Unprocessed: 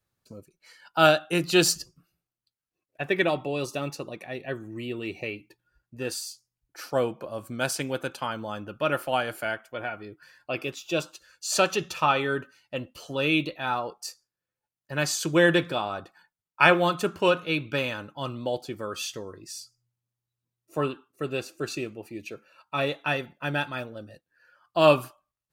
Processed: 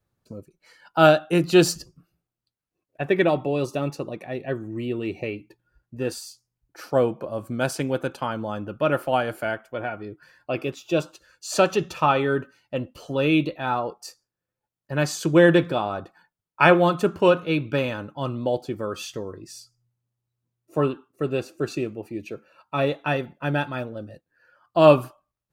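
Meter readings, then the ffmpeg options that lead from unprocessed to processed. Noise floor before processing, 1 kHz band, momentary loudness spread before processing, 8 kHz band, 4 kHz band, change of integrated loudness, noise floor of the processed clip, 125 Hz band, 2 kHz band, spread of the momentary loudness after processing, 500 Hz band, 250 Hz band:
below −85 dBFS, +3.0 dB, 18 LU, −3.0 dB, −2.5 dB, +3.5 dB, below −85 dBFS, +6.5 dB, 0.0 dB, 18 LU, +5.0 dB, +6.0 dB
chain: -af "tiltshelf=frequency=1300:gain=5,volume=1.5dB"

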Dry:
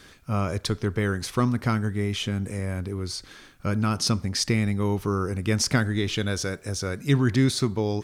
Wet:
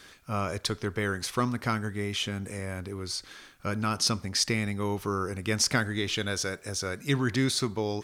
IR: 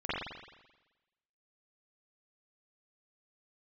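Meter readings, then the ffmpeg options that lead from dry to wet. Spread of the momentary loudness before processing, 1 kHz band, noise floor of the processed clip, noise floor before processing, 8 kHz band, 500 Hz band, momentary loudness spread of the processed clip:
8 LU, −1.0 dB, −53 dBFS, −51 dBFS, 0.0 dB, −3.5 dB, 9 LU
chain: -af "lowshelf=frequency=360:gain=-8.5"

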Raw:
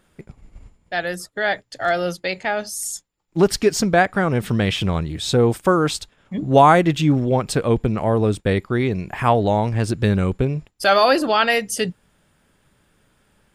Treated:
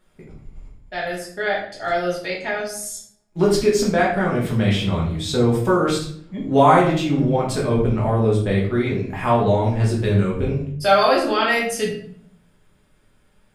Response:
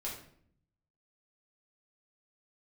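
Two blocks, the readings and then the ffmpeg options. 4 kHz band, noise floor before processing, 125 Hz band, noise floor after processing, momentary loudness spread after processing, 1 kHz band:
−2.0 dB, −63 dBFS, +0.5 dB, −59 dBFS, 11 LU, −1.0 dB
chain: -filter_complex "[1:a]atrim=start_sample=2205[link_01];[0:a][link_01]afir=irnorm=-1:irlink=0,volume=-2dB"

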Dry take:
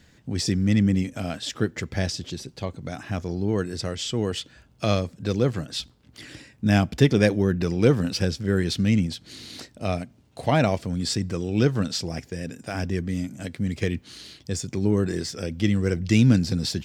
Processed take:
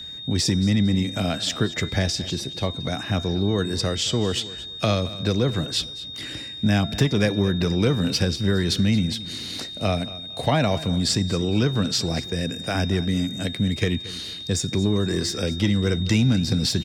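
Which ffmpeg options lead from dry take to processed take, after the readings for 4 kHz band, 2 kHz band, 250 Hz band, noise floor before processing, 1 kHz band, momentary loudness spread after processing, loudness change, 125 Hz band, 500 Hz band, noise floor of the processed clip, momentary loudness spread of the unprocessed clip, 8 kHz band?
+7.5 dB, +2.0 dB, +1.0 dB, −57 dBFS, +1.5 dB, 7 LU, +1.5 dB, +1.5 dB, 0.0 dB, −36 dBFS, 14 LU, +4.5 dB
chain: -filter_complex "[0:a]acrossover=split=280|520|4800[link_01][link_02][link_03][link_04];[link_02]asoftclip=type=tanh:threshold=-28.5dB[link_05];[link_01][link_05][link_03][link_04]amix=inputs=4:normalize=0,acompressor=threshold=-24dB:ratio=3,bandreject=frequency=341:width_type=h:width=4,bandreject=frequency=682:width_type=h:width=4,bandreject=frequency=1023:width_type=h:width=4,bandreject=frequency=1364:width_type=h:width=4,bandreject=frequency=1705:width_type=h:width=4,bandreject=frequency=2046:width_type=h:width=4,bandreject=frequency=2387:width_type=h:width=4,bandreject=frequency=2728:width_type=h:width=4,bandreject=frequency=3069:width_type=h:width=4,bandreject=frequency=3410:width_type=h:width=4,bandreject=frequency=3751:width_type=h:width=4,bandreject=frequency=4092:width_type=h:width=4,bandreject=frequency=4433:width_type=h:width=4,bandreject=frequency=4774:width_type=h:width=4,bandreject=frequency=5115:width_type=h:width=4,bandreject=frequency=5456:width_type=h:width=4,bandreject=frequency=5797:width_type=h:width=4,bandreject=frequency=6138:width_type=h:width=4,bandreject=frequency=6479:width_type=h:width=4,bandreject=frequency=6820:width_type=h:width=4,bandreject=frequency=7161:width_type=h:width=4,bandreject=frequency=7502:width_type=h:width=4,bandreject=frequency=7843:width_type=h:width=4,bandreject=frequency=8184:width_type=h:width=4,bandreject=frequency=8525:width_type=h:width=4,bandreject=frequency=8866:width_type=h:width=4,bandreject=frequency=9207:width_type=h:width=4,bandreject=frequency=9548:width_type=h:width=4,bandreject=frequency=9889:width_type=h:width=4,bandreject=frequency=10230:width_type=h:width=4,aeval=exprs='val(0)+0.01*sin(2*PI*3700*n/s)':channel_layout=same,aecho=1:1:226|452|678:0.141|0.0381|0.0103,volume=6dB"

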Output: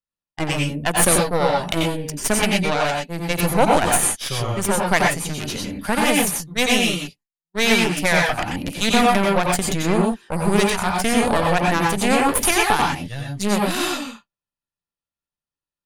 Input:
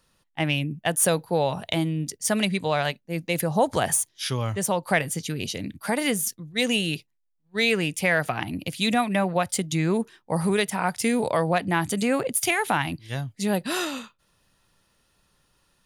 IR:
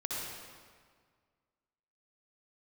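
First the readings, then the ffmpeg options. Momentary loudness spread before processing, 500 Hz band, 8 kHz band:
8 LU, +4.5 dB, +6.0 dB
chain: -filter_complex "[0:a]aeval=exprs='0.447*(cos(1*acos(clip(val(0)/0.447,-1,1)))-cos(1*PI/2))+0.0794*(cos(6*acos(clip(val(0)/0.447,-1,1)))-cos(6*PI/2))+0.0158*(cos(7*acos(clip(val(0)/0.447,-1,1)))-cos(7*PI/2))':channel_layout=same,agate=range=-33dB:threshold=-43dB:ratio=3:detection=peak[link_01];[1:a]atrim=start_sample=2205,atrim=end_sample=3969,asetrate=29988,aresample=44100[link_02];[link_01][link_02]afir=irnorm=-1:irlink=0,volume=4dB"

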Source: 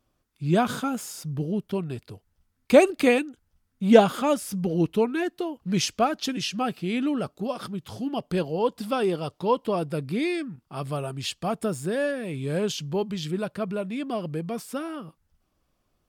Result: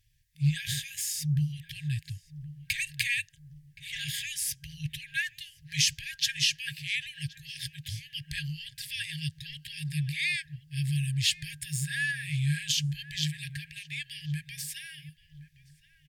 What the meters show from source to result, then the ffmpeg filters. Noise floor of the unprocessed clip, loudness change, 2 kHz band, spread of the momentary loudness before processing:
−74 dBFS, −5.5 dB, +1.5 dB, 13 LU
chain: -filter_complex "[0:a]acontrast=37,alimiter=limit=-13dB:level=0:latency=1:release=45,asplit=2[link_01][link_02];[link_02]adelay=1071,lowpass=frequency=1400:poles=1,volume=-15.5dB,asplit=2[link_03][link_04];[link_04]adelay=1071,lowpass=frequency=1400:poles=1,volume=0.38,asplit=2[link_05][link_06];[link_06]adelay=1071,lowpass=frequency=1400:poles=1,volume=0.38[link_07];[link_03][link_05][link_07]amix=inputs=3:normalize=0[link_08];[link_01][link_08]amix=inputs=2:normalize=0,afftfilt=real='re*(1-between(b*sr/4096,160,1600))':imag='im*(1-between(b*sr/4096,160,1600))':win_size=4096:overlap=0.75"

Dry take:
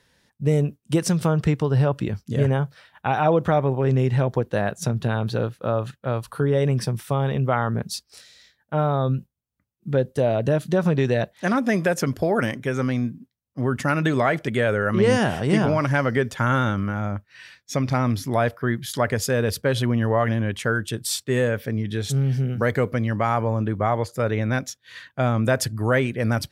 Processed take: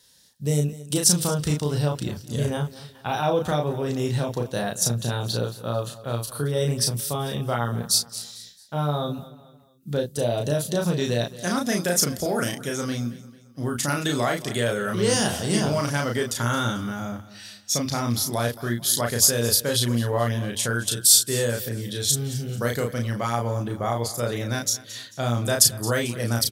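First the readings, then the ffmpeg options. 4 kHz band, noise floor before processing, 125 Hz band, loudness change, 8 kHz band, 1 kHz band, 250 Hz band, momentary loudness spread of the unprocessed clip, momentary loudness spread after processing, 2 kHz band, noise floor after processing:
+8.5 dB, −72 dBFS, −4.0 dB, −1.0 dB, +13.0 dB, −4.0 dB, −3.5 dB, 6 LU, 12 LU, −4.0 dB, −50 dBFS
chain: -filter_complex "[0:a]asplit=2[link_01][link_02];[link_02]adelay=34,volume=-3dB[link_03];[link_01][link_03]amix=inputs=2:normalize=0,aexciter=amount=6.7:drive=2.4:freq=3300,asplit=2[link_04][link_05];[link_05]aecho=0:1:221|442|663:0.133|0.056|0.0235[link_06];[link_04][link_06]amix=inputs=2:normalize=0,volume=-5.5dB"

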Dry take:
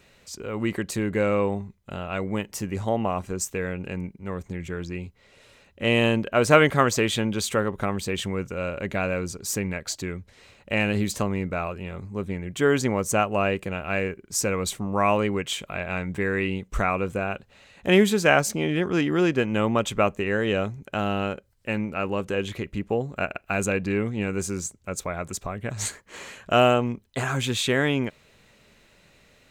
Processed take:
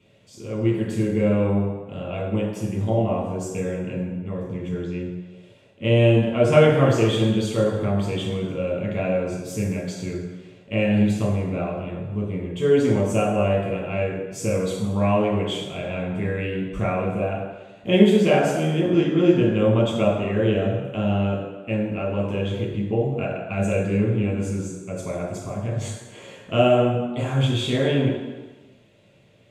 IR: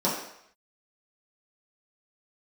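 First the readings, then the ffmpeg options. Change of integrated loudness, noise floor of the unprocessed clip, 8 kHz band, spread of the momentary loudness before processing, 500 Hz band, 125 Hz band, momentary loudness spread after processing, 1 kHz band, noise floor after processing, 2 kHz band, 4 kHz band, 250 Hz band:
+3.0 dB, −58 dBFS, −8.0 dB, 13 LU, +3.5 dB, +7.0 dB, 13 LU, −2.5 dB, −50 dBFS, −5.0 dB, −1.0 dB, +4.5 dB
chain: -filter_complex "[1:a]atrim=start_sample=2205,asetrate=26460,aresample=44100[link_01];[0:a][link_01]afir=irnorm=-1:irlink=0,volume=-17dB"

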